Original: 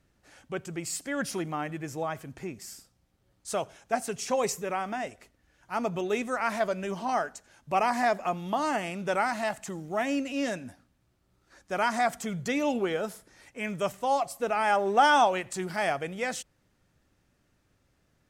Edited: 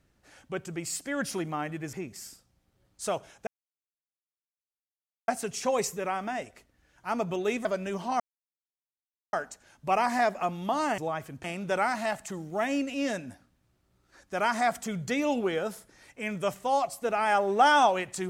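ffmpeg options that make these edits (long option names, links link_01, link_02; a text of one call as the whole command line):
ffmpeg -i in.wav -filter_complex "[0:a]asplit=7[link_01][link_02][link_03][link_04][link_05][link_06][link_07];[link_01]atrim=end=1.932[link_08];[link_02]atrim=start=2.388:end=3.93,asetpts=PTS-STARTPTS,afade=type=out:start_time=1.538:duration=0.004:curve=hsin,apad=pad_dur=1.81[link_09];[link_03]atrim=start=3.93:end=6.302,asetpts=PTS-STARTPTS,afade=type=in:duration=0.004:curve=hsin[link_10];[link_04]atrim=start=6.618:end=7.17,asetpts=PTS-STARTPTS,afade=type=out:start_time=0.548:duration=0.004:curve=hsin,apad=pad_dur=1.13[link_11];[link_05]atrim=start=7.17:end=8.822,asetpts=PTS-STARTPTS,afade=type=in:duration=0.004:curve=hsin[link_12];[link_06]atrim=start=1.928:end=2.392[link_13];[link_07]atrim=start=8.818[link_14];[link_09][link_10]concat=n=2:v=0:a=1[link_15];[link_08][link_15]acrossfade=duration=0.004:curve1=hsin:curve2=hsin[link_16];[link_11][link_12]concat=n=2:v=0:a=1[link_17];[link_16][link_17]acrossfade=duration=0.004:curve1=hsin:curve2=hsin[link_18];[link_18][link_13]acrossfade=duration=0.004:curve1=hsin:curve2=hsin[link_19];[link_19][link_14]acrossfade=duration=0.004:curve1=hsin:curve2=hsin" out.wav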